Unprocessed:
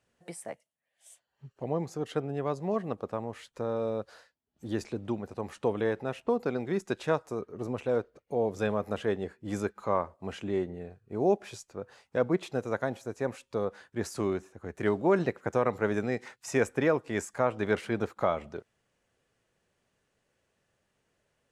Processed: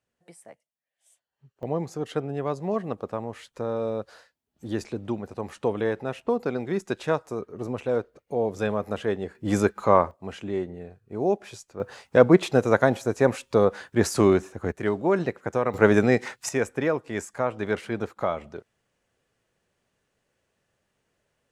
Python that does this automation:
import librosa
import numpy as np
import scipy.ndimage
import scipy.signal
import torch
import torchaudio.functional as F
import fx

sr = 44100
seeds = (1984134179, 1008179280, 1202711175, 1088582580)

y = fx.gain(x, sr, db=fx.steps((0.0, -7.5), (1.63, 3.0), (9.35, 10.0), (10.11, 1.5), (11.8, 11.5), (14.72, 2.0), (15.74, 11.0), (16.49, 1.0)))